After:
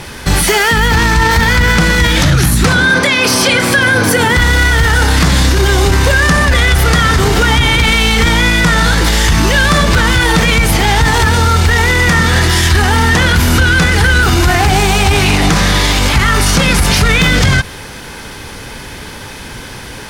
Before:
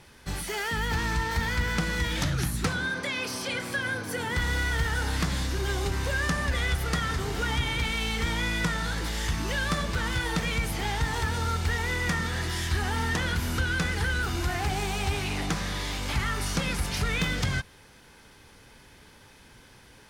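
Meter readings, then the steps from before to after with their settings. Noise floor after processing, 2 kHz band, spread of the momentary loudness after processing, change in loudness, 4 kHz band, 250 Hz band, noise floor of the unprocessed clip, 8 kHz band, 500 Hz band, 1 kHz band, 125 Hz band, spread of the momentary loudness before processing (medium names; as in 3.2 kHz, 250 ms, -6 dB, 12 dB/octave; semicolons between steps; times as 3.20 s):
-28 dBFS, +19.0 dB, 16 LU, +18.5 dB, +19.0 dB, +18.5 dB, -53 dBFS, +19.5 dB, +19.0 dB, +19.0 dB, +18.0 dB, 3 LU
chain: loudness maximiser +26 dB; trim -1 dB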